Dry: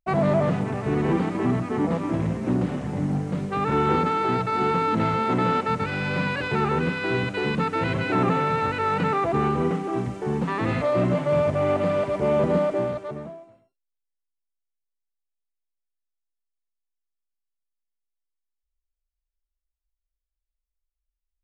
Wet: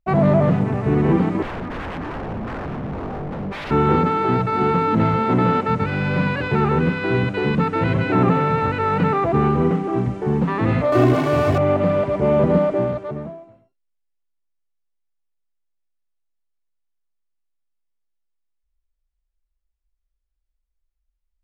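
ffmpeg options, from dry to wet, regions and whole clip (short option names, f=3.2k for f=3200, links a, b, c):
-filter_complex "[0:a]asettb=1/sr,asplit=3[a][b][c];[a]atrim=end=1.424[d];[b]atrim=start=1.42:end=3.71,asetpts=PTS-STARTPTS,afade=t=in:d=0.004:c=qsin,afade=t=out:st=2.286:d=0.004:c=qsin,lowpass=2.1k,aeval=exprs='0.0376*(abs(mod(val(0)/0.0376+3,4)-2)-1)':c=same[e];[c]atrim=start=3.706[f];[d][e]acrossfade=d=0.004:c1=hsin:c2=qsin[g];[g][f]acrossfade=d=0.004:c1=qsin:c2=hsin,asettb=1/sr,asplit=3[h][i][j];[h]atrim=end=10.924[k];[i]atrim=start=10.92:end=11.58,asetpts=PTS-STARTPTS,afade=t=in:d=0.004:c=qsin,afade=t=out:st=0.656:d=0.004:c=qsin,aeval=exprs='val(0)+0.5*0.0447*sgn(val(0))':c=same,highpass=82,aecho=1:1:2.7:1,atrim=end_sample=29106[l];[j]atrim=start=11.576[m];[k][l]acrossfade=d=0.004:c1=hsin:c2=qsin[n];[n][m]acrossfade=d=0.004:c1=qsin:c2=hsin,lowpass=f=2.7k:p=1,lowshelf=f=220:g=5.5,volume=3.5dB"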